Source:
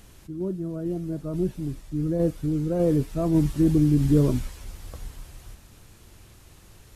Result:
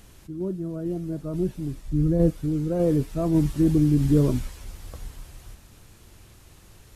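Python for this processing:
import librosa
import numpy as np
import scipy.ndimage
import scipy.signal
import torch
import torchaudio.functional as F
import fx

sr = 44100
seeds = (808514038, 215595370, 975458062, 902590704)

y = fx.low_shelf(x, sr, hz=160.0, db=11.0, at=(1.85, 2.3))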